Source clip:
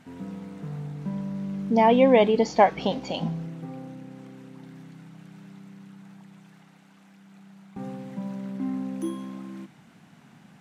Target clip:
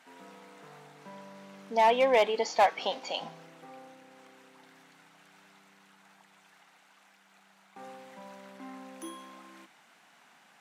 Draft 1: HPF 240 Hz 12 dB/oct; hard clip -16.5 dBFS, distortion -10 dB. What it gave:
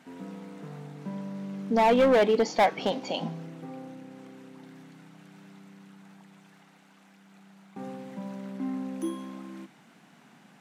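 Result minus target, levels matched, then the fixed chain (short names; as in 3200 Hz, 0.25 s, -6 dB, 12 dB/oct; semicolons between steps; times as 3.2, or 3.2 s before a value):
250 Hz band +13.5 dB
HPF 680 Hz 12 dB/oct; hard clip -16.5 dBFS, distortion -13 dB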